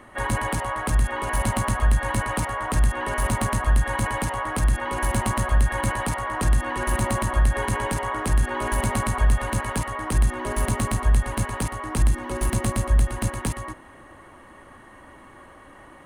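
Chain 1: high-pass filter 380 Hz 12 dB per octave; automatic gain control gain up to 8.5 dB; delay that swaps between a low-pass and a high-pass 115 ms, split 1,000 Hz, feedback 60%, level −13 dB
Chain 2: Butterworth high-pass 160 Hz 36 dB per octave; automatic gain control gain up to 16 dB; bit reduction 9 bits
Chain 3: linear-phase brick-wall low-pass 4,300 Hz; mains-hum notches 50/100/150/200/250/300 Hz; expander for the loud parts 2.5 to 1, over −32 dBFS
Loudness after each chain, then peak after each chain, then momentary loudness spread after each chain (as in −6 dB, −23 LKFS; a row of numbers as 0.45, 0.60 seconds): −21.0, −17.5, −35.0 LKFS; −3.5, −1.0, −13.0 dBFS; 20, 16, 10 LU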